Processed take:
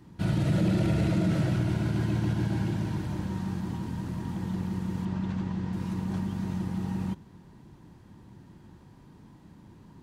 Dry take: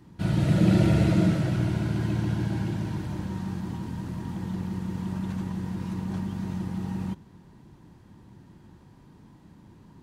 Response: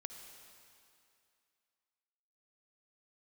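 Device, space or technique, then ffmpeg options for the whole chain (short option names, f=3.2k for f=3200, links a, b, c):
clipper into limiter: -filter_complex "[0:a]asettb=1/sr,asplit=3[a][b][c];[a]atrim=end=5.054[d];[b]atrim=start=5.05:end=5.73,asetpts=PTS-STARTPTS,afade=t=in:d=0.004:c=qsin,afade=t=out:st=0.676:d=0.004:c=qsin,lowpass=5.3k[e];[c]atrim=start=5.726[f];[d][e]acrossfade=d=0.004:c1=hsin:c2=qsin[g];[g][f]acrossfade=d=0.004:c1=qsin:c2=hsin,asoftclip=type=hard:threshold=-12.5dB,alimiter=limit=-18dB:level=0:latency=1:release=47"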